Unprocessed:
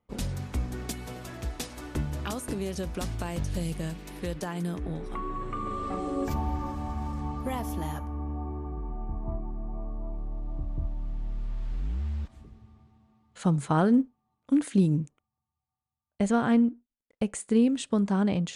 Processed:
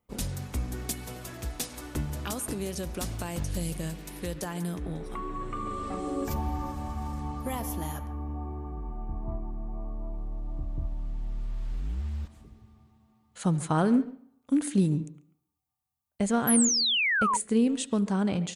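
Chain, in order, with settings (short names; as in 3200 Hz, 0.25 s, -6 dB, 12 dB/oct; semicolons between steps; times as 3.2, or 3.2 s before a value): high shelf 7200 Hz +11.5 dB; speakerphone echo 0.14 s, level -15 dB; on a send at -19 dB: reverb RT60 0.65 s, pre-delay 63 ms; on the sum: painted sound fall, 16.47–17.37, 910–12000 Hz -24 dBFS; gain -1.5 dB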